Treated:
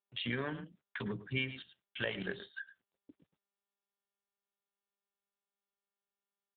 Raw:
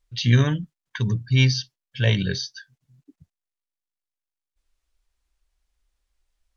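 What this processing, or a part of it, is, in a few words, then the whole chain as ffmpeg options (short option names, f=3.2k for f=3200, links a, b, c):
voicemail: -filter_complex "[0:a]agate=range=-53dB:threshold=-50dB:ratio=16:detection=peak,asettb=1/sr,asplit=3[a][b][c];[a]atrim=end=2.154[d];[b]atrim=start=2.15:end=2.56,asetpts=PTS-STARTPTS,afade=t=in:d=0.004:c=qsin,afade=t=out:st=0.406:d=0.004:c=qsin,lowshelf=f=72:g=4.5[e];[c]atrim=start=2.556[f];[d][e]acrossfade=d=0.004:c1=hsin:c2=qsin[g];[g][f]acrossfade=d=0.004:c1=qsin:c2=hsin,highpass=390,lowpass=2.8k,aecho=1:1:106:0.168,acompressor=threshold=-33dB:ratio=6,volume=1.5dB" -ar 8000 -c:a libopencore_amrnb -b:a 7400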